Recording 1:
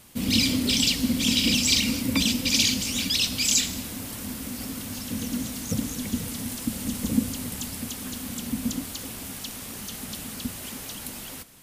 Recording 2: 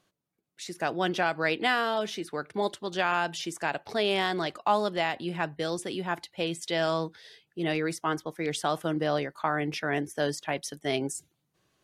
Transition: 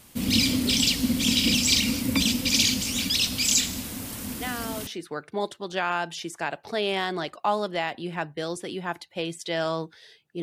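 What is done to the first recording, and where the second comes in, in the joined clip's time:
recording 1
0:04.32: mix in recording 2 from 0:01.54 0.55 s −8 dB
0:04.87: continue with recording 2 from 0:02.09

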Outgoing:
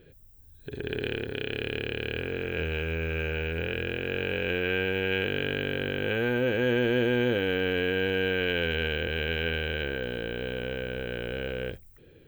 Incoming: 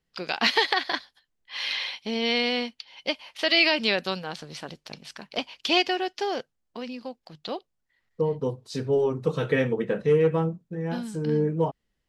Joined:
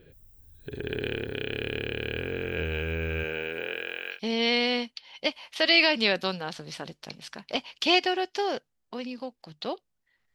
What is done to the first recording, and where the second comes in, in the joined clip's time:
outgoing
0:03.23–0:04.20: high-pass filter 170 Hz → 1,200 Hz
0:04.15: continue with incoming from 0:01.98, crossfade 0.10 s

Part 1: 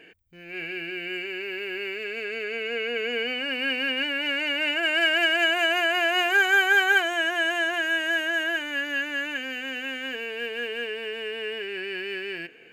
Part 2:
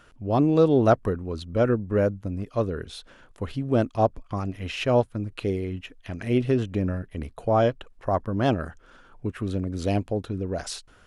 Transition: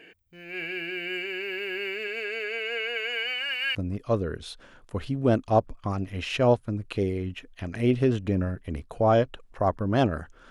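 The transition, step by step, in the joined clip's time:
part 1
0:02.07–0:03.75: high-pass filter 240 Hz → 1,400 Hz
0:03.75: continue with part 2 from 0:02.22

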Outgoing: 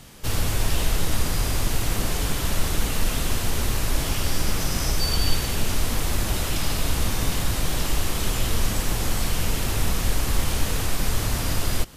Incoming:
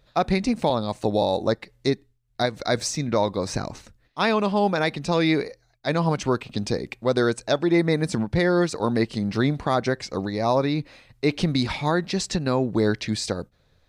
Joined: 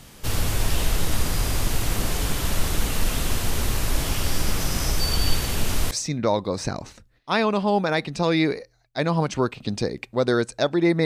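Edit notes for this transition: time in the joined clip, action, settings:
outgoing
0:05.91: continue with incoming from 0:02.80

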